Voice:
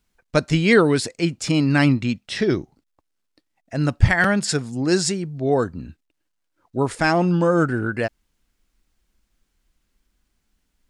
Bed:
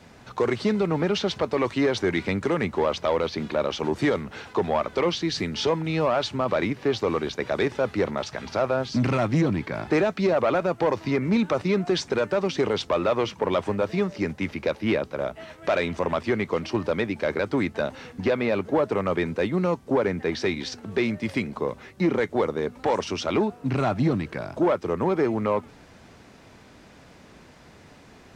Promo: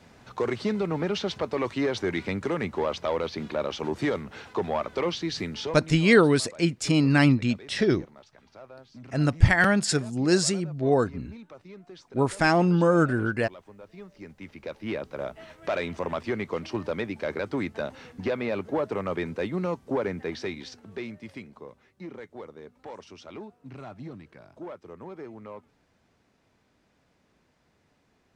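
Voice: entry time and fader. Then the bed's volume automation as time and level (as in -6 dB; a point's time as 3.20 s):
5.40 s, -2.5 dB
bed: 5.51 s -4 dB
6.17 s -23 dB
13.78 s -23 dB
15.17 s -5 dB
20.13 s -5 dB
21.82 s -18 dB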